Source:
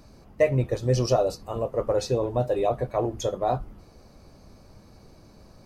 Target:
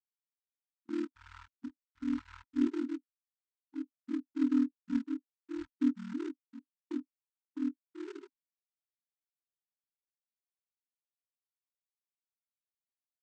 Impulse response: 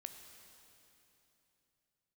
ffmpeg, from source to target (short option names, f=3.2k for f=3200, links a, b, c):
-filter_complex "[0:a]aecho=1:1:135:0.168,afftfilt=real='re*gte(hypot(re,im),0.631)':imag='im*gte(hypot(re,im),0.631)':win_size=1024:overlap=0.75,acrusher=bits=8:mode=log:mix=0:aa=0.000001,dynaudnorm=f=280:g=7:m=7.5dB,asplit=3[a][b][c];[a]bandpass=f=530:t=q:w=8,volume=0dB[d];[b]bandpass=f=1.84k:t=q:w=8,volume=-6dB[e];[c]bandpass=f=2.48k:t=q:w=8,volume=-9dB[f];[d][e][f]amix=inputs=3:normalize=0,asetrate=53981,aresample=44100,atempo=0.816958,highpass=f=71:w=0.5412,highpass=f=71:w=1.3066,bandreject=f=1.4k:w=21,agate=range=-17dB:threshold=-48dB:ratio=16:detection=peak,aexciter=amount=13.9:drive=8.2:freq=2.1k,aeval=exprs='val(0)*sin(2*PI*46*n/s)':c=same,asetrate=18846,aresample=44100,volume=-5dB"